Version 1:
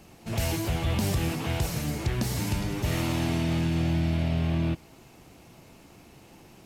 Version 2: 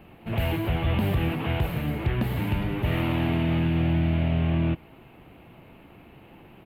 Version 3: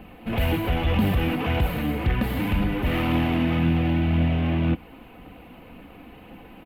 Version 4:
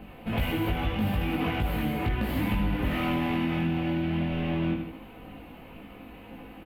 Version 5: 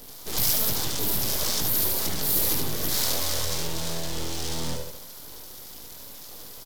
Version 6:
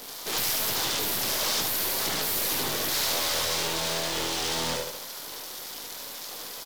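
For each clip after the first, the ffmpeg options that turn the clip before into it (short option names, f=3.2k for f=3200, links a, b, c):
-af "firequalizer=gain_entry='entry(2900,0);entry(5600,-30);entry(13000,-7)':delay=0.05:min_phase=1,volume=2.5dB"
-filter_complex "[0:a]aecho=1:1:4:0.52,asplit=2[a][b];[b]asoftclip=type=tanh:threshold=-27.5dB,volume=-5dB[c];[a][c]amix=inputs=2:normalize=0,aphaser=in_gain=1:out_gain=1:delay=3.9:decay=0.26:speed=1.9:type=triangular"
-filter_complex "[0:a]asplit=2[a][b];[b]aecho=0:1:76|152|228|304:0.422|0.16|0.0609|0.0231[c];[a][c]amix=inputs=2:normalize=0,acompressor=threshold=-22dB:ratio=6,asplit=2[d][e];[e]adelay=19,volume=-3dB[f];[d][f]amix=inputs=2:normalize=0,volume=-3dB"
-filter_complex "[0:a]aeval=exprs='abs(val(0))':c=same,aexciter=amount=13.7:drive=5.4:freq=4k,asplit=2[a][b];[b]aecho=0:1:74:0.501[c];[a][c]amix=inputs=2:normalize=0,volume=-2.5dB"
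-filter_complex "[0:a]acrusher=bits=3:mode=log:mix=0:aa=0.000001,asplit=2[a][b];[b]highpass=f=720:p=1,volume=24dB,asoftclip=type=tanh:threshold=-6.5dB[c];[a][c]amix=inputs=2:normalize=0,lowpass=f=5.1k:p=1,volume=-6dB,volume=-8.5dB"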